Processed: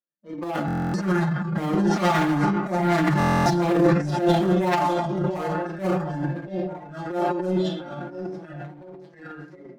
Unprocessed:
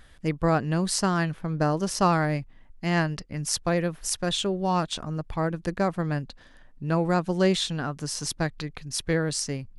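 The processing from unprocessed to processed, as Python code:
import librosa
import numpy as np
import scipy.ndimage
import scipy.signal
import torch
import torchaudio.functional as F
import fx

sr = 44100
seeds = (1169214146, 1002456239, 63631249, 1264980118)

y = fx.spec_quant(x, sr, step_db=15)
y = fx.doppler_pass(y, sr, speed_mps=7, closest_m=4.8, pass_at_s=3.09)
y = scipy.signal.sosfilt(scipy.signal.butter(2, 1200.0, 'lowpass', fs=sr, output='sos'), y)
y = fx.comb_fb(y, sr, f0_hz=290.0, decay_s=0.16, harmonics='all', damping=0.0, mix_pct=70)
y = fx.echo_split(y, sr, split_hz=830.0, low_ms=692, high_ms=122, feedback_pct=52, wet_db=-9.0)
y = fx.leveller(y, sr, passes=5)
y = fx.noise_reduce_blind(y, sr, reduce_db=14)
y = scipy.signal.sosfilt(scipy.signal.butter(4, 160.0, 'highpass', fs=sr, output='sos'), y)
y = fx.room_shoebox(y, sr, seeds[0], volume_m3=32.0, walls='mixed', distance_m=0.64)
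y = fx.transient(y, sr, attack_db=-11, sustain_db=11)
y = y + 0.74 * np.pad(y, (int(5.7 * sr / 1000.0), 0))[:len(y)]
y = fx.buffer_glitch(y, sr, at_s=(0.66, 3.18), block=1024, repeats=11)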